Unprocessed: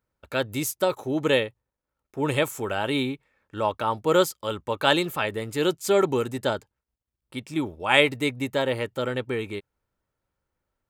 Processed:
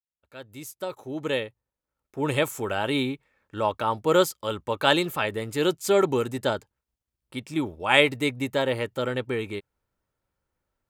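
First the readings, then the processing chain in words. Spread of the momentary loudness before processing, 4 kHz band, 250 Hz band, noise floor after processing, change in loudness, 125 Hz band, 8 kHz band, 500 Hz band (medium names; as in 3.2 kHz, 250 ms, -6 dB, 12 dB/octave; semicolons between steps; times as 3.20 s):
11 LU, -0.5 dB, -0.5 dB, under -85 dBFS, -0.5 dB, -0.5 dB, -2.0 dB, -0.5 dB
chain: fade-in on the opening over 2.51 s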